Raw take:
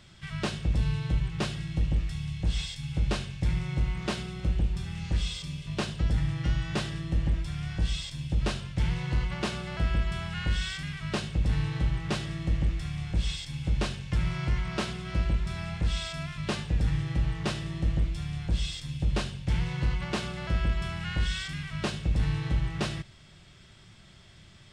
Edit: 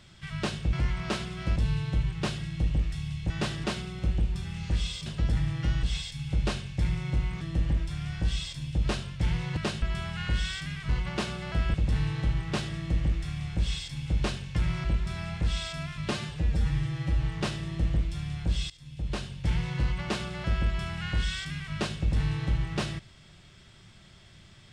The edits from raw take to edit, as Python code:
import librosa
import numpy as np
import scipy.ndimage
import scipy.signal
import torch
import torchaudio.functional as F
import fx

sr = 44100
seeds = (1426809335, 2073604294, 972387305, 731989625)

y = fx.edit(x, sr, fx.swap(start_s=2.47, length_s=1.58, other_s=6.64, other_length_s=0.34),
    fx.cut(start_s=5.47, length_s=0.4),
    fx.swap(start_s=9.14, length_s=0.85, other_s=11.06, other_length_s=0.25),
    fx.move(start_s=14.41, length_s=0.83, to_s=0.73),
    fx.stretch_span(start_s=16.51, length_s=0.74, factor=1.5),
    fx.fade_in_from(start_s=18.73, length_s=0.77, floor_db=-18.5), tone=tone)